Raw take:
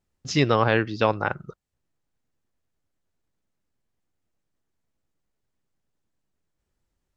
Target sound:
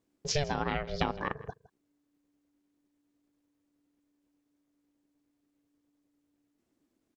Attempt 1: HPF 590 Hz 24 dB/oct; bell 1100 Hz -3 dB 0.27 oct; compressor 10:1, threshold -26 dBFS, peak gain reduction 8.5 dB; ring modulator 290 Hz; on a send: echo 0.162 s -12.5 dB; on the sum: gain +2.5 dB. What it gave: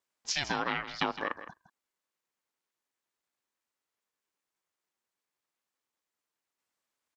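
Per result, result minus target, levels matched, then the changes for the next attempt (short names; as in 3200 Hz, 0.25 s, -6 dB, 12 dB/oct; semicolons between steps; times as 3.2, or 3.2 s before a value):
500 Hz band -5.0 dB; echo-to-direct +7.5 dB
remove: HPF 590 Hz 24 dB/oct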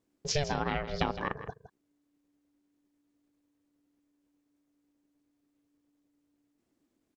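echo-to-direct +7.5 dB
change: echo 0.162 s -20 dB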